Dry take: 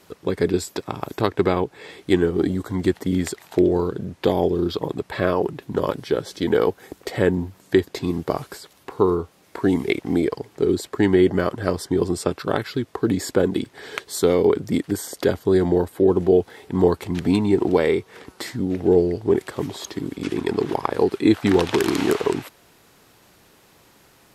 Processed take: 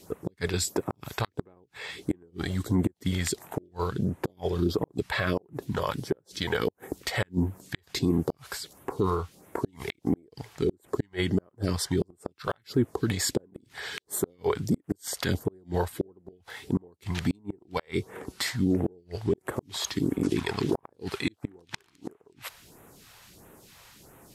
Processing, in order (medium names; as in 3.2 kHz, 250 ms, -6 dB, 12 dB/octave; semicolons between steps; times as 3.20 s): phase shifter stages 2, 1.5 Hz, lowest notch 250–4500 Hz; inverted gate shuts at -11 dBFS, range -39 dB; peak limiter -17.5 dBFS, peak gain reduction 9.5 dB; trim +2.5 dB